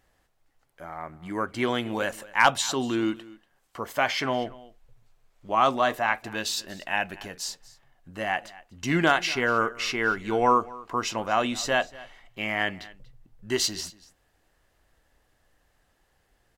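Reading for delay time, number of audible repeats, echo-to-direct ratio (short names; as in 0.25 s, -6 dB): 0.238 s, 1, -20.5 dB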